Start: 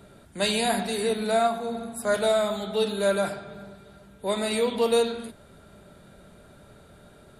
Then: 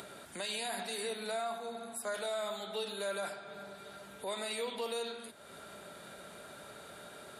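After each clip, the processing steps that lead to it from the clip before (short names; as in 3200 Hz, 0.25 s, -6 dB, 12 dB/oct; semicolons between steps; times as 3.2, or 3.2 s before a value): HPF 810 Hz 6 dB/oct; upward compressor, threshold -32 dBFS; limiter -23 dBFS, peak gain reduction 8.5 dB; gain -5.5 dB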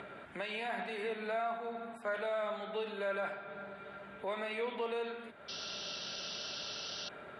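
resonant high shelf 3500 Hz -13.5 dB, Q 1.5; painted sound noise, 5.48–7.09, 2600–6000 Hz -42 dBFS; air absorption 73 m; gain +1 dB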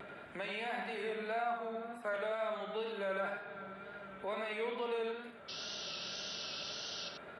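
echo 86 ms -6.5 dB; wow and flutter 49 cents; gain -1.5 dB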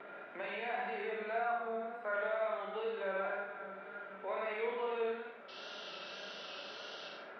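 crackle 330/s -58 dBFS; BPF 320–2400 Hz; Schroeder reverb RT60 0.52 s, combs from 31 ms, DRR 0.5 dB; gain -1 dB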